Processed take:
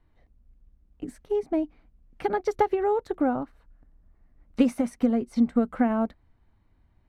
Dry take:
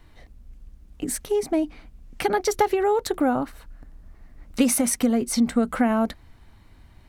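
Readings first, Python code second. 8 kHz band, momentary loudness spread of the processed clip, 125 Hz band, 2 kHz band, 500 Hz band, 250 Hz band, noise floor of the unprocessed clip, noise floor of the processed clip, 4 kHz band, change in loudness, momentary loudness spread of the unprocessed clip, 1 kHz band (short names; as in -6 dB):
under -20 dB, 15 LU, -4.0 dB, -7.0 dB, -3.0 dB, -2.0 dB, -52 dBFS, -65 dBFS, -14.0 dB, -3.0 dB, 9 LU, -3.5 dB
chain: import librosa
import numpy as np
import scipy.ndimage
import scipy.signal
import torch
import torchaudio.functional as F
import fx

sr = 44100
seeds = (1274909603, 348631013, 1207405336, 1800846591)

y = fx.lowpass(x, sr, hz=1400.0, slope=6)
y = fx.upward_expand(y, sr, threshold_db=-40.0, expansion=1.5)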